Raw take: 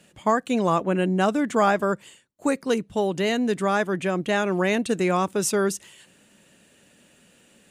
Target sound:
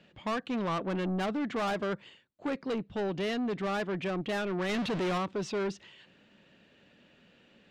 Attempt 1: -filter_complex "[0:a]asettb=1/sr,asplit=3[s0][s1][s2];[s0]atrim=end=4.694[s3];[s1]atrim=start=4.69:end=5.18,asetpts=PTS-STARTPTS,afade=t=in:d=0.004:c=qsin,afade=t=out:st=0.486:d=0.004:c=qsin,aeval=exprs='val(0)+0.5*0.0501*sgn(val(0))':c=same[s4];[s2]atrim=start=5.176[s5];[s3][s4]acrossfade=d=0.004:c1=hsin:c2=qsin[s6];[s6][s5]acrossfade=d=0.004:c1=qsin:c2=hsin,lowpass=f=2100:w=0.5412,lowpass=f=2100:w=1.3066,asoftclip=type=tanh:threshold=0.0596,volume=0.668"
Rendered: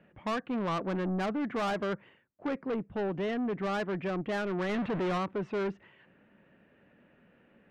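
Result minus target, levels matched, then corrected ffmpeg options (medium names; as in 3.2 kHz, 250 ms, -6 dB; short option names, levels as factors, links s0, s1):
4 kHz band -4.0 dB
-filter_complex "[0:a]asettb=1/sr,asplit=3[s0][s1][s2];[s0]atrim=end=4.694[s3];[s1]atrim=start=4.69:end=5.18,asetpts=PTS-STARTPTS,afade=t=in:d=0.004:c=qsin,afade=t=out:st=0.486:d=0.004:c=qsin,aeval=exprs='val(0)+0.5*0.0501*sgn(val(0))':c=same[s4];[s2]atrim=start=5.176[s5];[s3][s4]acrossfade=d=0.004:c1=hsin:c2=qsin[s6];[s6][s5]acrossfade=d=0.004:c1=qsin:c2=hsin,lowpass=f=4300:w=0.5412,lowpass=f=4300:w=1.3066,asoftclip=type=tanh:threshold=0.0596,volume=0.668"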